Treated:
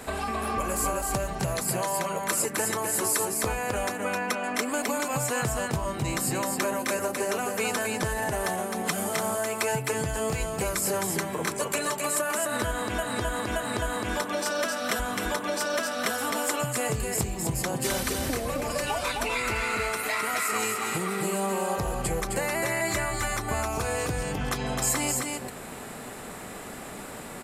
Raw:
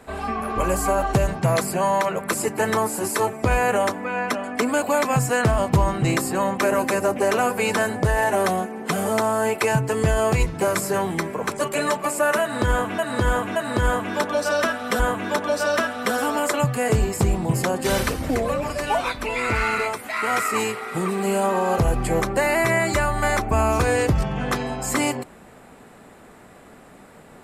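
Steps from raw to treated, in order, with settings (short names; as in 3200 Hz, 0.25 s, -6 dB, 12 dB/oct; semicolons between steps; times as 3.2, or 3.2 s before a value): compressor 6:1, threshold -34 dBFS, peak gain reduction 19 dB; high shelf 3300 Hz +9.5 dB; on a send: echo 0.261 s -3.5 dB; on the sum: gain +4.5 dB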